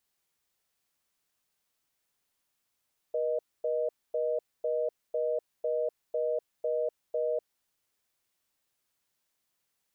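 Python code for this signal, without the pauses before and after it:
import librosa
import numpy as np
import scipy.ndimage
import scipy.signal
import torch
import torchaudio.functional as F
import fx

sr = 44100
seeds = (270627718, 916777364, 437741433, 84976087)

y = fx.call_progress(sr, length_s=4.28, kind='reorder tone', level_db=-29.5)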